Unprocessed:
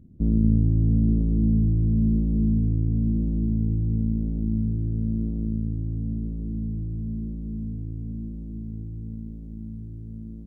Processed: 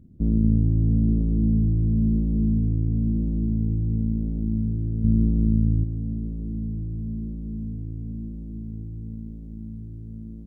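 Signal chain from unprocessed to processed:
0:05.04–0:05.84: low-shelf EQ 360 Hz +8 dB

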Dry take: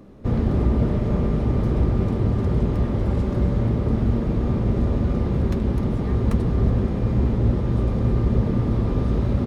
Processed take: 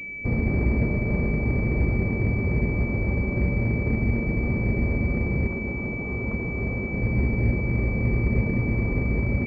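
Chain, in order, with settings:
0:05.47–0:06.93: low-shelf EQ 210 Hz −8 dB
switching amplifier with a slow clock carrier 2,300 Hz
level −3 dB

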